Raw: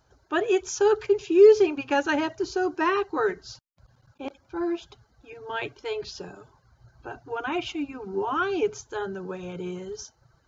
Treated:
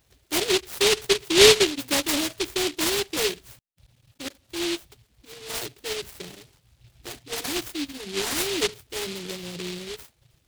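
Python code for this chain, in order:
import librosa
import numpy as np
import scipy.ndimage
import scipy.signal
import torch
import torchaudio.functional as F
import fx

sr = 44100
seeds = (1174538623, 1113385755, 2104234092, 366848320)

y = fx.env_lowpass_down(x, sr, base_hz=1100.0, full_db=-18.0)
y = fx.high_shelf(y, sr, hz=2800.0, db=fx.steps((0.0, 2.5), (2.5, -6.0)))
y = fx.noise_mod_delay(y, sr, seeds[0], noise_hz=3200.0, depth_ms=0.3)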